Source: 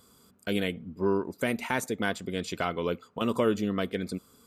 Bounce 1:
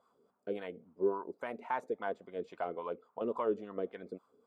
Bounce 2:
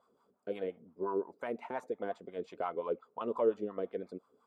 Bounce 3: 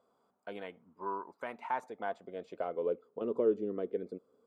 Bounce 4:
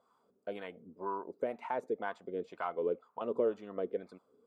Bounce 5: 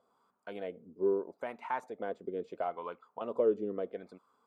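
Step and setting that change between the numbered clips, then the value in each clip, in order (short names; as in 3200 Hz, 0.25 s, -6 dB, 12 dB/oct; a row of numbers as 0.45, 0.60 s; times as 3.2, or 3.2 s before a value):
wah, rate: 3.6, 5.7, 0.21, 2, 0.76 Hz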